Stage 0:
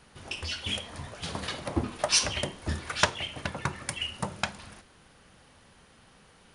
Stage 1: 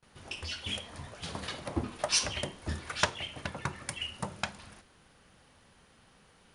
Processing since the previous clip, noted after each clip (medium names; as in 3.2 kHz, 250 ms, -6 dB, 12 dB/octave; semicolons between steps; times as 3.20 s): gate with hold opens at -48 dBFS; trim -4 dB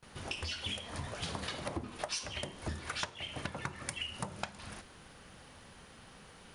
compression 8:1, threshold -42 dBFS, peak gain reduction 20.5 dB; trim +6.5 dB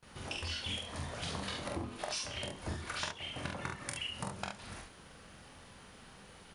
early reflections 24 ms -9 dB, 45 ms -4 dB, 71 ms -6 dB; trim -2.5 dB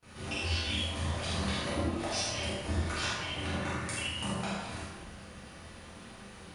reverberation RT60 1.3 s, pre-delay 4 ms, DRR -9 dB; trim -4 dB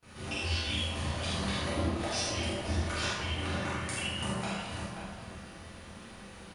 echo from a far wall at 91 m, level -7 dB